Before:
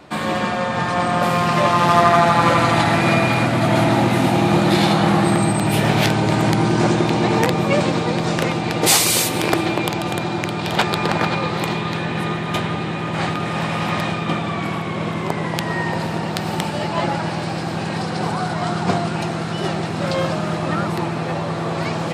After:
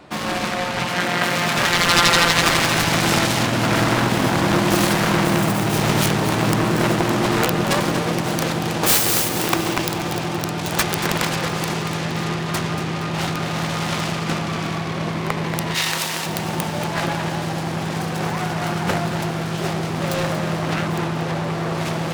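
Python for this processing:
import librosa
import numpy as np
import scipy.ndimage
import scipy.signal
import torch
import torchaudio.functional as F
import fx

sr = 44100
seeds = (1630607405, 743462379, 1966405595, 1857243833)

p1 = fx.self_delay(x, sr, depth_ms=0.98)
p2 = fx.highpass(p1, sr, hz=120.0, slope=12, at=(0.86, 1.58))
p3 = fx.tilt_eq(p2, sr, slope=4.5, at=(15.74, 16.25), fade=0.02)
p4 = p3 + fx.echo_feedback(p3, sr, ms=234, feedback_pct=44, wet_db=-11, dry=0)
y = F.gain(torch.from_numpy(p4), -1.0).numpy()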